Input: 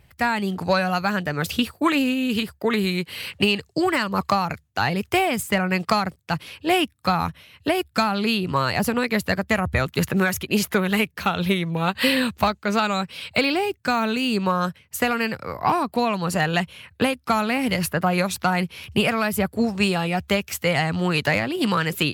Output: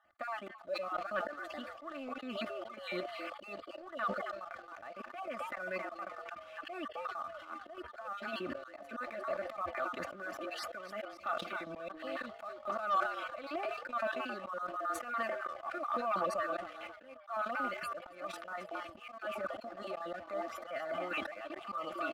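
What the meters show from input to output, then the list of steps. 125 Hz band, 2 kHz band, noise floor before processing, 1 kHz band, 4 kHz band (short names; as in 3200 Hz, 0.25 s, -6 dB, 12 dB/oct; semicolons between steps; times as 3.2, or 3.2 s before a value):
-33.0 dB, -17.0 dB, -59 dBFS, -13.5 dB, -22.5 dB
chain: random spectral dropouts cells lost 29%; compressor 6:1, threshold -29 dBFS, peak gain reduction 13.5 dB; chopper 1.8 Hz, depth 65%, duty 40%; on a send: frequency-shifting echo 0.269 s, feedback 43%, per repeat +150 Hz, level -13 dB; on the sum: sample leveller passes 1; double band-pass 920 Hz, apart 0.76 oct; auto swell 0.266 s; comb 3.4 ms, depth 89%; sample leveller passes 1; transient shaper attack -7 dB, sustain -2 dB; sustainer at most 80 dB/s; gain +6.5 dB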